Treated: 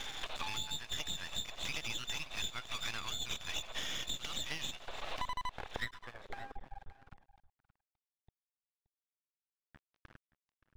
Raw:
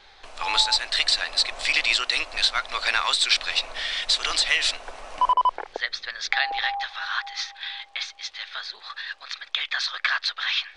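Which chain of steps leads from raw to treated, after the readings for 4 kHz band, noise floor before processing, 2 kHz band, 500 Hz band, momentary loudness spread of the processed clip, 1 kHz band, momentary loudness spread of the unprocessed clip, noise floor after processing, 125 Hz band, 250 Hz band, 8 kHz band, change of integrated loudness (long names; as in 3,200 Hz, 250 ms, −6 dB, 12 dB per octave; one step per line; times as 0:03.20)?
−17.5 dB, −52 dBFS, −19.5 dB, −12.5 dB, 10 LU, −19.5 dB, 13 LU, below −85 dBFS, can't be measured, −2.5 dB, −12.5 dB, −16.5 dB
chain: hearing-aid frequency compression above 3,400 Hz 4 to 1
in parallel at −6.5 dB: soft clipping −22.5 dBFS, distortion −8 dB
on the sum: speech leveller within 4 dB 0.5 s
low-pass filter sweep 3,300 Hz → 130 Hz, 0:05.71–0:06.67
high-shelf EQ 3,500 Hz −4.5 dB
downward compressor 6 to 1, threshold −49 dBFS, peak gain reduction 34 dB
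half-wave rectification
single-tap delay 574 ms −17.5 dB
level +12 dB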